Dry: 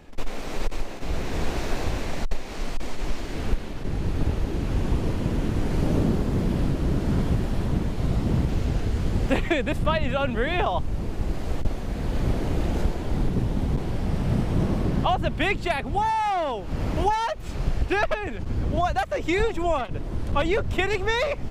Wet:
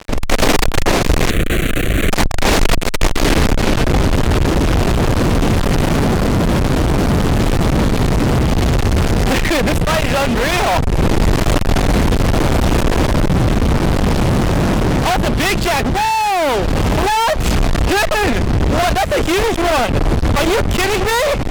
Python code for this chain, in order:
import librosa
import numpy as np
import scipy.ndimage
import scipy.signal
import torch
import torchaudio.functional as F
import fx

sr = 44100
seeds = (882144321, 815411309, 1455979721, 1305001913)

y = fx.fuzz(x, sr, gain_db=34.0, gate_db=-43.0)
y = fx.cheby_harmonics(y, sr, harmonics=(5,), levels_db=(-13,), full_scale_db=-7.5)
y = fx.rider(y, sr, range_db=5, speed_s=0.5)
y = fx.fixed_phaser(y, sr, hz=2200.0, stages=4, at=(1.3, 2.1))